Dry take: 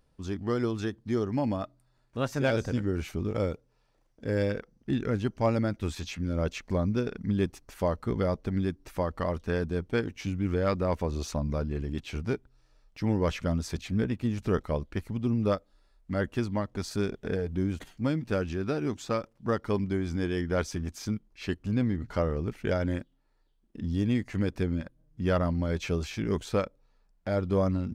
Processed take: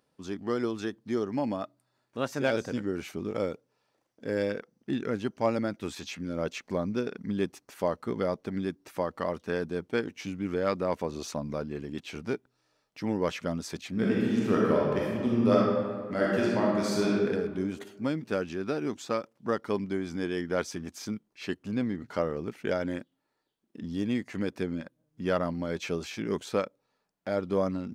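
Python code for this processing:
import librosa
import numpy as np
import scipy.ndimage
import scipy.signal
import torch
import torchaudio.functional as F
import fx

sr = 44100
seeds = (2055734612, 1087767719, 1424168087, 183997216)

y = fx.reverb_throw(x, sr, start_s=13.91, length_s=3.33, rt60_s=1.7, drr_db=-5.0)
y = scipy.signal.sosfilt(scipy.signal.butter(2, 200.0, 'highpass', fs=sr, output='sos'), y)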